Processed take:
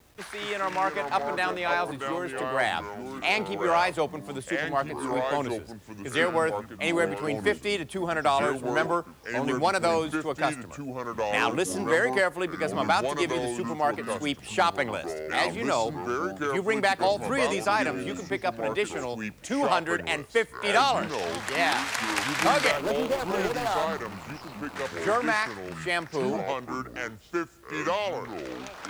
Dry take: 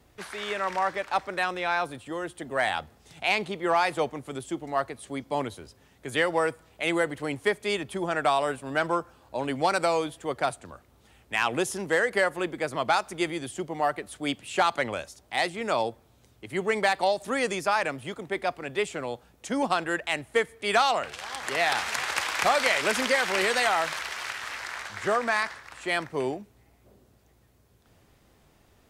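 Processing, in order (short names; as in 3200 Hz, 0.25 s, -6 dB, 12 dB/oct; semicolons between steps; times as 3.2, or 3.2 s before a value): 22.71–24.76 median filter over 25 samples; echoes that change speed 0.171 s, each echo -5 st, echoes 2, each echo -6 dB; bit-crush 10-bit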